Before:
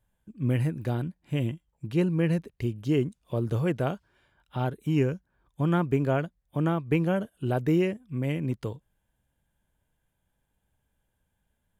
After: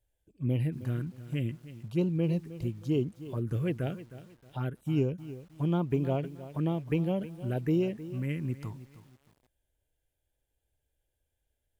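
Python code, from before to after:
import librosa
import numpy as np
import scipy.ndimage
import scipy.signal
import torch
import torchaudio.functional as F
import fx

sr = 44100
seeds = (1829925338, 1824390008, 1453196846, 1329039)

y = fx.env_phaser(x, sr, low_hz=190.0, high_hz=1800.0, full_db=-20.0)
y = fx.echo_crushed(y, sr, ms=313, feedback_pct=35, bits=8, wet_db=-14.5)
y = y * librosa.db_to_amplitude(-3.0)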